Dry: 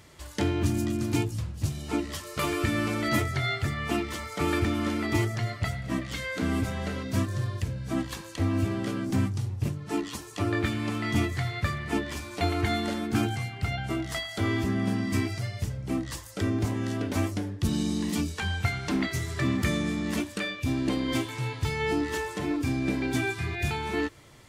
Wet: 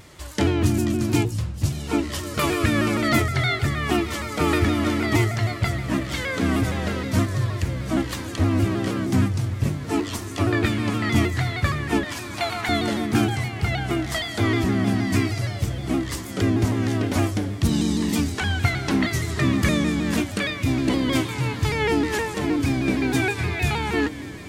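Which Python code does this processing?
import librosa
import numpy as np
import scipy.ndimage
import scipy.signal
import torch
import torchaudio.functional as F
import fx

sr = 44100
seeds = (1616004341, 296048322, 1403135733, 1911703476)

y = fx.highpass(x, sr, hz=660.0, slope=24, at=(12.04, 12.69))
y = fx.echo_diffused(y, sr, ms=1773, feedback_pct=57, wet_db=-14)
y = fx.vibrato_shape(y, sr, shape='saw_down', rate_hz=6.4, depth_cents=100.0)
y = y * 10.0 ** (6.0 / 20.0)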